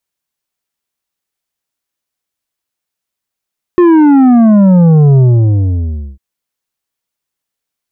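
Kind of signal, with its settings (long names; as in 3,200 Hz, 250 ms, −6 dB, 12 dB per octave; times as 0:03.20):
bass drop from 360 Hz, over 2.40 s, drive 8 dB, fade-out 1.00 s, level −4 dB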